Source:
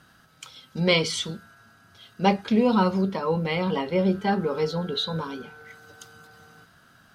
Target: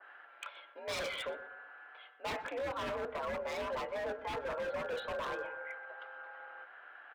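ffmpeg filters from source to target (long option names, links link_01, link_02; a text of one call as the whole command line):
ffmpeg -i in.wav -filter_complex "[0:a]highpass=frequency=460:width_type=q:width=0.5412,highpass=frequency=460:width_type=q:width=1.307,lowpass=frequency=2600:width_type=q:width=0.5176,lowpass=frequency=2600:width_type=q:width=0.7071,lowpass=frequency=2600:width_type=q:width=1.932,afreqshift=66,areverse,acompressor=threshold=-34dB:ratio=20,areverse,aeval=exprs='0.015*(abs(mod(val(0)/0.015+3,4)-2)-1)':channel_layout=same,asplit=2[link_01][link_02];[link_02]adelay=123,lowpass=frequency=1300:poles=1,volume=-12.5dB,asplit=2[link_03][link_04];[link_04]adelay=123,lowpass=frequency=1300:poles=1,volume=0.39,asplit=2[link_05][link_06];[link_06]adelay=123,lowpass=frequency=1300:poles=1,volume=0.39,asplit=2[link_07][link_08];[link_08]adelay=123,lowpass=frequency=1300:poles=1,volume=0.39[link_09];[link_01][link_03][link_05][link_07][link_09]amix=inputs=5:normalize=0,adynamicequalizer=threshold=0.00178:dfrequency=1800:dqfactor=0.7:tfrequency=1800:tqfactor=0.7:attack=5:release=100:ratio=0.375:range=3:mode=cutabove:tftype=highshelf,volume=4.5dB" out.wav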